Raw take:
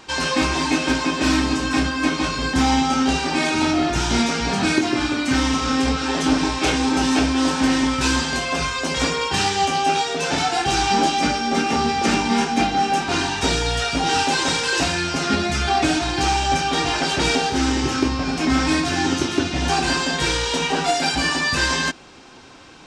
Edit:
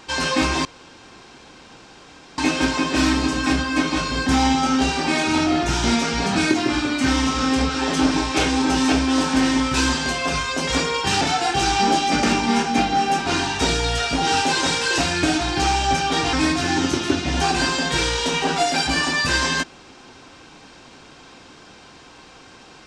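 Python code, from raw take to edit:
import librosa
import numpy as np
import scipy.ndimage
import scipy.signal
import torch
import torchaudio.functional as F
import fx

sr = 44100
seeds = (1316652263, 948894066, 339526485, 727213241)

y = fx.edit(x, sr, fx.insert_room_tone(at_s=0.65, length_s=1.73),
    fx.cut(start_s=9.48, length_s=0.84),
    fx.cut(start_s=11.34, length_s=0.71),
    fx.cut(start_s=15.05, length_s=0.79),
    fx.cut(start_s=16.94, length_s=1.67), tone=tone)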